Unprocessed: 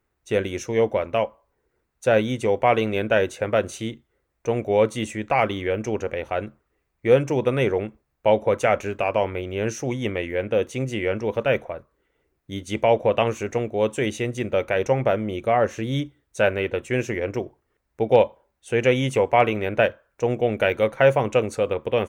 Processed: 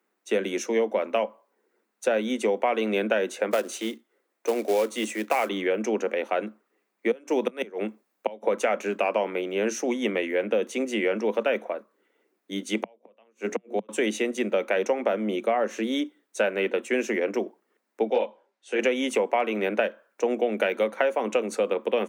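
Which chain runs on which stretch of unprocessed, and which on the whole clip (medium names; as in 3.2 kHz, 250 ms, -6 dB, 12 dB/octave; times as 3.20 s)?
3.51–5.49 s: high-pass 240 Hz 24 dB/octave + short-mantissa float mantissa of 2-bit
7.11–8.43 s: de-esser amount 60% + treble shelf 4.3 kHz +5 dB + inverted gate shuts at -11 dBFS, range -24 dB
12.76–13.89 s: hum notches 60/120/180/240/300/360/420/480/540 Hz + inverted gate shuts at -15 dBFS, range -40 dB
18.09–18.79 s: band-pass 210–5200 Hz + treble shelf 4.1 kHz +6 dB + detune thickener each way 21 cents
whole clip: steep high-pass 190 Hz 96 dB/octave; compression 10:1, threshold -21 dBFS; trim +1.5 dB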